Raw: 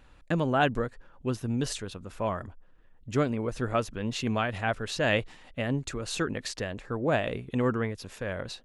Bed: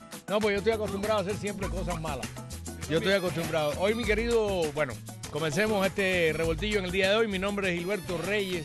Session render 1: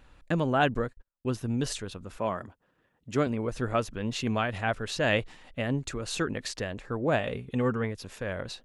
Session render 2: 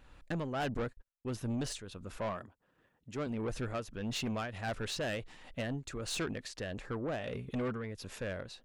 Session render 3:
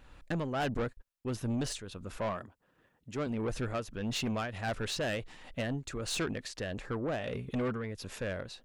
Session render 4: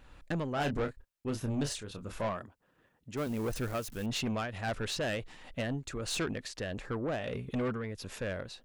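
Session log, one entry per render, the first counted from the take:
0.74–1.35 gate -45 dBFS, range -42 dB; 2.18–3.27 HPF 130 Hz; 7.19–7.84 notch comb 330 Hz
tremolo triangle 1.5 Hz, depth 70%; soft clip -30.5 dBFS, distortion -10 dB
gain +2.5 dB
0.54–2.27 doubler 28 ms -7 dB; 3.17–4.06 switching spikes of -38 dBFS

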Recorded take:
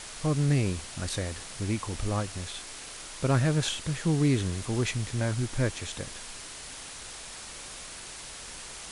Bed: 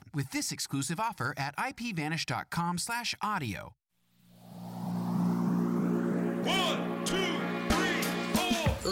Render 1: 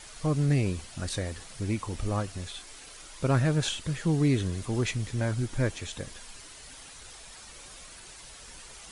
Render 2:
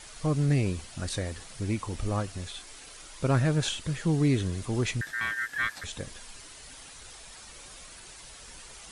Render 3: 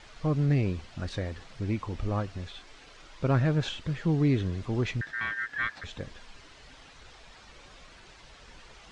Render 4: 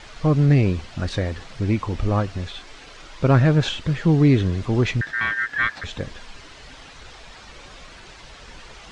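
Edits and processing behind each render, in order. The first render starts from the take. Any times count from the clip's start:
denoiser 8 dB, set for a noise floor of -43 dBFS
5.01–5.84 ring modulator 1700 Hz
air absorption 170 m
gain +9 dB

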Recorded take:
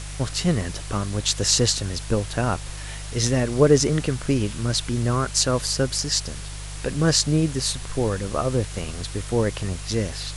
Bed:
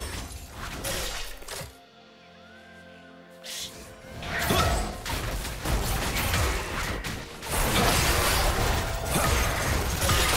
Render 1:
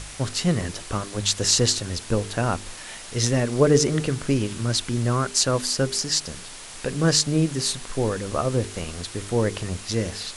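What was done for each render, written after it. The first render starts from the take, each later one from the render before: de-hum 50 Hz, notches 9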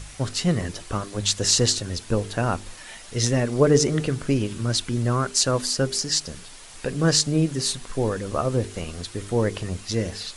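denoiser 6 dB, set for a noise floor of -40 dBFS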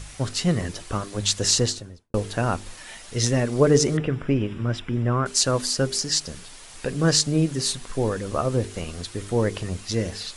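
1.48–2.14 studio fade out; 3.97–5.26 polynomial smoothing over 25 samples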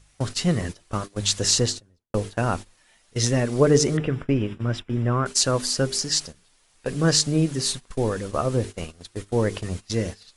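gate -30 dBFS, range -18 dB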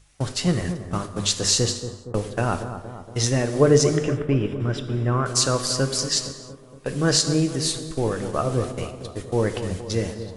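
analogue delay 0.233 s, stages 2048, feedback 59%, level -10 dB; non-linear reverb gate 0.36 s falling, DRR 9 dB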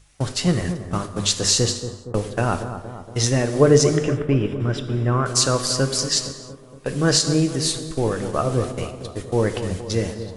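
gain +2 dB; limiter -2 dBFS, peak gain reduction 2.5 dB

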